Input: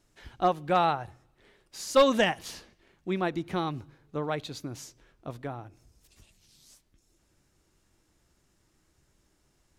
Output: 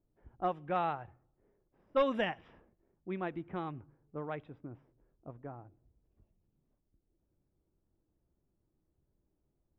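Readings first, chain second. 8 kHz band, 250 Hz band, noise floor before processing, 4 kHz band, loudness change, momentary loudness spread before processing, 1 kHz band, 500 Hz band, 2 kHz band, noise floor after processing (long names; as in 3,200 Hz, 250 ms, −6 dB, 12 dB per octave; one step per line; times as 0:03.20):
below −30 dB, −8.5 dB, −70 dBFS, −14.0 dB, −8.0 dB, 21 LU, −8.5 dB, −8.5 dB, −9.0 dB, −81 dBFS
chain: Savitzky-Golay smoothing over 25 samples
low-pass that shuts in the quiet parts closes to 590 Hz, open at −20.5 dBFS
level −8.5 dB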